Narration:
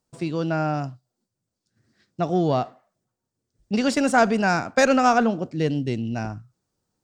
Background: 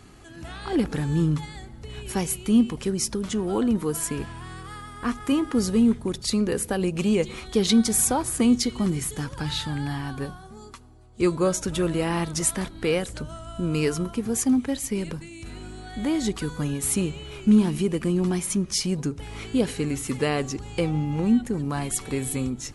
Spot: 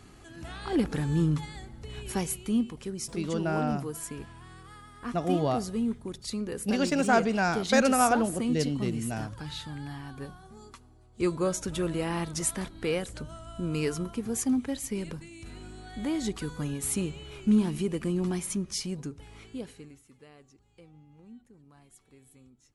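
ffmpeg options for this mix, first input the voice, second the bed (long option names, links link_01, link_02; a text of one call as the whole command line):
ffmpeg -i stem1.wav -i stem2.wav -filter_complex "[0:a]adelay=2950,volume=-5.5dB[link_01];[1:a]volume=1.5dB,afade=type=out:start_time=2.06:duration=0.65:silence=0.446684,afade=type=in:start_time=10.12:duration=0.43:silence=0.595662,afade=type=out:start_time=18.37:duration=1.66:silence=0.0630957[link_02];[link_01][link_02]amix=inputs=2:normalize=0" out.wav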